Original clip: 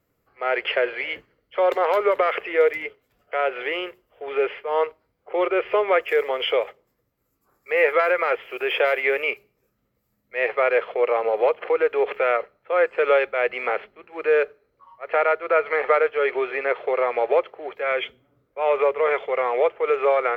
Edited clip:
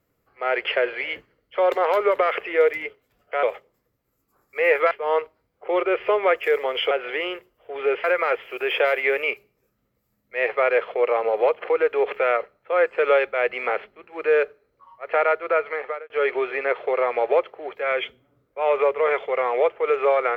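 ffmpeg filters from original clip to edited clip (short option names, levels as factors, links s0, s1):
-filter_complex "[0:a]asplit=6[s0][s1][s2][s3][s4][s5];[s0]atrim=end=3.432[s6];[s1]atrim=start=6.558:end=8.042[s7];[s2]atrim=start=4.558:end=6.562[s8];[s3]atrim=start=3.428:end=4.562[s9];[s4]atrim=start=8.038:end=16.1,asetpts=PTS-STARTPTS,afade=t=out:st=7.402:d=0.66[s10];[s5]atrim=start=16.1,asetpts=PTS-STARTPTS,afade=t=in:d=0.004:c=hsin[s11];[s6][s7]acrossfade=d=0.004:c1=hsin:c2=hsin[s12];[s12][s8]acrossfade=d=0.004:c1=hsin:c2=hsin[s13];[s13][s9]acrossfade=d=0.004:c1=hsin:c2=hsin[s14];[s10][s11]concat=n=2:v=0:a=1[s15];[s14][s15]acrossfade=d=0.004:c1=hsin:c2=hsin"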